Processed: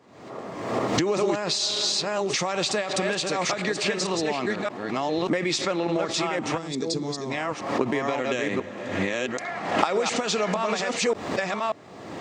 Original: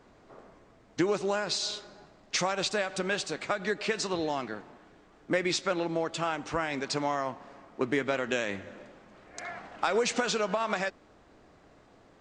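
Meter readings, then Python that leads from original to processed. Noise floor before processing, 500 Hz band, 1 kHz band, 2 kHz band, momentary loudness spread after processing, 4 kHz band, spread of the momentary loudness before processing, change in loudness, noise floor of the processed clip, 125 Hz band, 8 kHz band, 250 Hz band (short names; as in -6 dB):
-59 dBFS, +5.5 dB, +5.5 dB, +4.0 dB, 6 LU, +7.5 dB, 13 LU, +5.0 dB, -41 dBFS, +7.5 dB, +7.0 dB, +7.0 dB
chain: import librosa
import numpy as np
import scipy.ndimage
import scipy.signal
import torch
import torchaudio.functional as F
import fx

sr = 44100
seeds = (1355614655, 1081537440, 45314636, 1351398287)

p1 = fx.reverse_delay(x, sr, ms=586, wet_db=-3)
p2 = fx.recorder_agc(p1, sr, target_db=-16.5, rise_db_per_s=36.0, max_gain_db=30)
p3 = scipy.signal.sosfilt(scipy.signal.butter(4, 100.0, 'highpass', fs=sr, output='sos'), p2)
p4 = fx.notch(p3, sr, hz=1500.0, q=9.2)
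p5 = fx.spec_box(p4, sr, start_s=6.58, length_s=0.73, low_hz=510.0, high_hz=3300.0, gain_db=-13)
p6 = 10.0 ** (-16.0 / 20.0) * np.tanh(p5 / 10.0 ** (-16.0 / 20.0))
p7 = p5 + (p6 * librosa.db_to_amplitude(-10.5))
p8 = fx.pre_swell(p7, sr, db_per_s=68.0)
y = p8 * librosa.db_to_amplitude(-1.5)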